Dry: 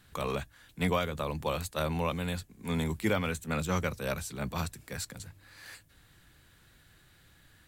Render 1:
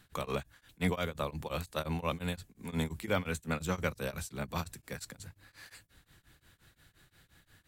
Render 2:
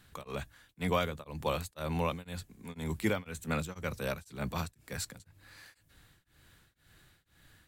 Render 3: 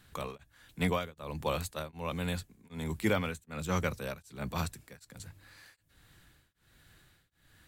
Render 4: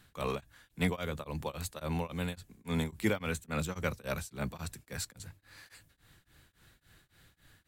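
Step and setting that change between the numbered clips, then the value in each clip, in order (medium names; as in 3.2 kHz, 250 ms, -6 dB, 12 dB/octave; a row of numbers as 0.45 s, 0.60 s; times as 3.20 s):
tremolo of two beating tones, nulls at: 5.7 Hz, 2 Hz, 1.3 Hz, 3.6 Hz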